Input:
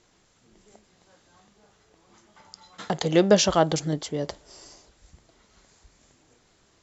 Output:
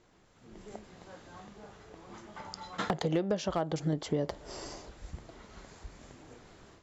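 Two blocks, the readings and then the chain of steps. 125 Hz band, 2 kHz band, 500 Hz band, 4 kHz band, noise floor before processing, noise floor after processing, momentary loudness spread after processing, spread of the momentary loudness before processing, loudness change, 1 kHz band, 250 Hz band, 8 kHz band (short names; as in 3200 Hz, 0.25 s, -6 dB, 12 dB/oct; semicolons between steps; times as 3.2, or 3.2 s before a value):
-5.5 dB, -8.5 dB, -10.0 dB, -12.5 dB, -63 dBFS, -63 dBFS, 22 LU, 15 LU, -11.5 dB, -8.0 dB, -8.0 dB, n/a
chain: compressor 20:1, threshold -36 dBFS, peak gain reduction 25 dB; high shelf 3200 Hz -12 dB; hard clip -30 dBFS, distortion -24 dB; AGC gain up to 10 dB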